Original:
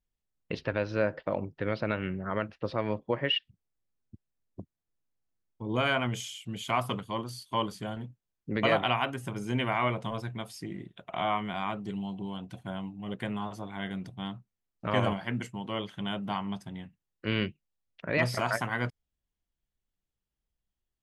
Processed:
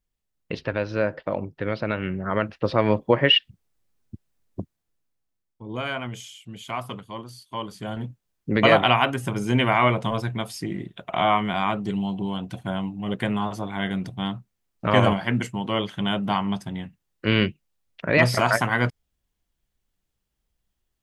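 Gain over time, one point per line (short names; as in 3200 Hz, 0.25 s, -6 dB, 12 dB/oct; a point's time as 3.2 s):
1.89 s +4 dB
2.89 s +11 dB
4.6 s +11 dB
5.63 s -2 dB
7.63 s -2 dB
8.06 s +9 dB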